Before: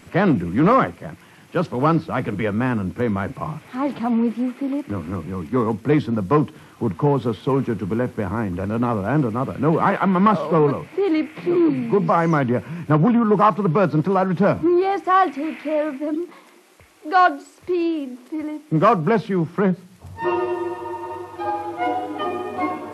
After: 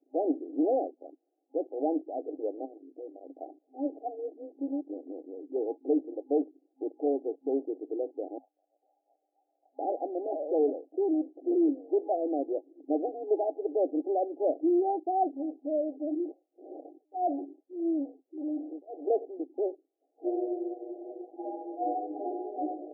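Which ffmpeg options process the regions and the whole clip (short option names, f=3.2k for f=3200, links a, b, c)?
-filter_complex "[0:a]asettb=1/sr,asplit=3[a][b][c];[a]atrim=end=2.654[d];[b]atrim=start=2.65:end=3.3,asetpts=PTS-STARTPTS,afade=t=in:d=0.004:c=qsin,afade=t=out:st=0.646:d=0.004:c=qsin,highpass=f=140:p=1,acompressor=threshold=-29dB:ratio=4:attack=3.2:release=140:knee=1:detection=peak[e];[c]atrim=start=3.296[f];[d][e]acrossfade=d=0.004:c1=hsin:c2=qsin[g];[g][f]acrossfade=d=0.004:c1=qsin:c2=hsin,asettb=1/sr,asplit=3[h][i][j];[h]atrim=end=8.384[k];[i]atrim=start=8.38:end=9.79,asetpts=PTS-STARTPTS,afade=t=in:d=0.004:c=qsin,afade=t=out:st=1.406:d=0.004:c=qsin,lowpass=f=2.6k:t=q:w=0.5098,lowpass=f=2.6k:t=q:w=0.6013,lowpass=f=2.6k:t=q:w=0.9,lowpass=f=2.6k:t=q:w=2.563,afreqshift=-3100,aeval=exprs='val(0)+0.00316*(sin(2*PI*60*n/s)+sin(2*PI*2*60*n/s)/2+sin(2*PI*3*60*n/s)/3+sin(2*PI*4*60*n/s)/4+sin(2*PI*5*60*n/s)/5)':c=same[l];[j]atrim=start=9.786[m];[k][l]acrossfade=d=0.004:c1=hsin:c2=qsin[n];[n][m]acrossfade=d=0.004:c1=qsin:c2=hsin,asettb=1/sr,asplit=3[o][p][q];[o]atrim=end=16.204[r];[p]atrim=start=16.2:end=19.4,asetpts=PTS-STARTPTS,afade=t=in:d=0.004:c=qsin,afade=t=out:st=3.196:d=0.004:c=qsin,aeval=exprs='val(0)+0.5*0.075*sgn(val(0))':c=same,tremolo=f=1.7:d=0.97[s];[q]atrim=start=19.396[t];[r][s]acrossfade=d=0.004:c1=hsin:c2=qsin[u];[u][t]acrossfade=d=0.004:c1=qsin:c2=hsin,afwtdn=0.0355,afftfilt=real='re*between(b*sr/4096,260,820)':imag='im*between(b*sr/4096,260,820)':win_size=4096:overlap=0.75,volume=-8dB"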